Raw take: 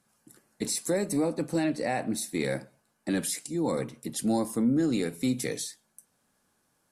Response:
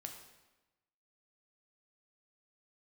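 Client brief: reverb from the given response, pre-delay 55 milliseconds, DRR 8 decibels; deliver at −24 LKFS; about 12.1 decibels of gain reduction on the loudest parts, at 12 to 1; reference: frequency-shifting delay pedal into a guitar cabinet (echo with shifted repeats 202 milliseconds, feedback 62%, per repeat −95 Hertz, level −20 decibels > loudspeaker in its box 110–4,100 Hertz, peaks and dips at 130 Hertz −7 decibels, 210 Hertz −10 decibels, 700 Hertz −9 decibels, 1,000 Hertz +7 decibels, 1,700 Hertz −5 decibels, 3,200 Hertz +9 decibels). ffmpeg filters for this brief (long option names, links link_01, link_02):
-filter_complex "[0:a]acompressor=threshold=-34dB:ratio=12,asplit=2[link_01][link_02];[1:a]atrim=start_sample=2205,adelay=55[link_03];[link_02][link_03]afir=irnorm=-1:irlink=0,volume=-4dB[link_04];[link_01][link_04]amix=inputs=2:normalize=0,asplit=6[link_05][link_06][link_07][link_08][link_09][link_10];[link_06]adelay=202,afreqshift=-95,volume=-20dB[link_11];[link_07]adelay=404,afreqshift=-190,volume=-24.2dB[link_12];[link_08]adelay=606,afreqshift=-285,volume=-28.3dB[link_13];[link_09]adelay=808,afreqshift=-380,volume=-32.5dB[link_14];[link_10]adelay=1010,afreqshift=-475,volume=-36.6dB[link_15];[link_05][link_11][link_12][link_13][link_14][link_15]amix=inputs=6:normalize=0,highpass=110,equalizer=frequency=130:width_type=q:width=4:gain=-7,equalizer=frequency=210:width_type=q:width=4:gain=-10,equalizer=frequency=700:width_type=q:width=4:gain=-9,equalizer=frequency=1000:width_type=q:width=4:gain=7,equalizer=frequency=1700:width_type=q:width=4:gain=-5,equalizer=frequency=3200:width_type=q:width=4:gain=9,lowpass=frequency=4100:width=0.5412,lowpass=frequency=4100:width=1.3066,volume=17.5dB"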